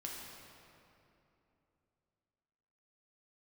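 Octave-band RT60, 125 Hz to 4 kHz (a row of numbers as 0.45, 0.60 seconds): 3.5, 3.4, 3.1, 2.8, 2.3, 1.8 seconds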